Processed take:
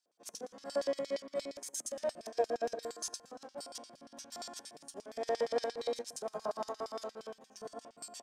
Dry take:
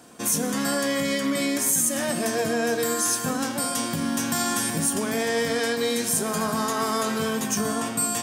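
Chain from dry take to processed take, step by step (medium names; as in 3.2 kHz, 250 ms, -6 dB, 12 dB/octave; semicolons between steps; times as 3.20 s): 5.28–6.72 s: dynamic bell 860 Hz, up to +4 dB, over -37 dBFS, Q 1.2; LFO band-pass square 8.6 Hz 600–4900 Hz; upward expansion 2.5:1, over -43 dBFS; trim +1 dB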